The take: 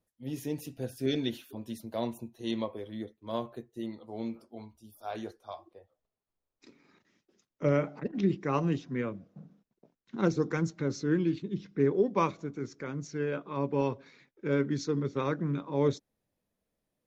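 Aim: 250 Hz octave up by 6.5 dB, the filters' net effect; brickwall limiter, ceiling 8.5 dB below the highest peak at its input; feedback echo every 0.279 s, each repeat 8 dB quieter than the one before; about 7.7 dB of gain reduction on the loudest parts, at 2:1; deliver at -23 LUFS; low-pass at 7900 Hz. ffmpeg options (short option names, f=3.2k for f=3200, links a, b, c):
-af "lowpass=7.9k,equalizer=f=250:t=o:g=8.5,acompressor=threshold=-31dB:ratio=2,alimiter=level_in=2dB:limit=-24dB:level=0:latency=1,volume=-2dB,aecho=1:1:279|558|837|1116|1395:0.398|0.159|0.0637|0.0255|0.0102,volume=13dB"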